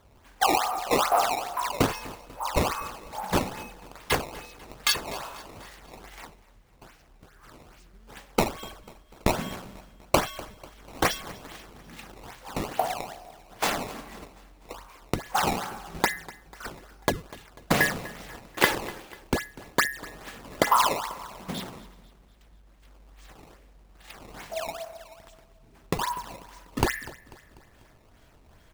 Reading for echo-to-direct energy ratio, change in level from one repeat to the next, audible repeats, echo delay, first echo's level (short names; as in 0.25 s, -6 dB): -18.5 dB, -6.0 dB, 3, 0.246 s, -20.0 dB